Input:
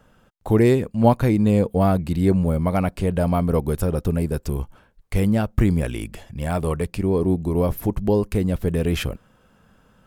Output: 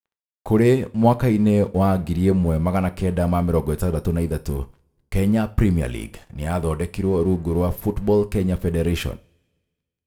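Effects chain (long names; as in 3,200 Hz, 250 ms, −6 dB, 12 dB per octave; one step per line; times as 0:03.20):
dead-zone distortion −45.5 dBFS
coupled-rooms reverb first 0.3 s, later 1.6 s, from −28 dB, DRR 10.5 dB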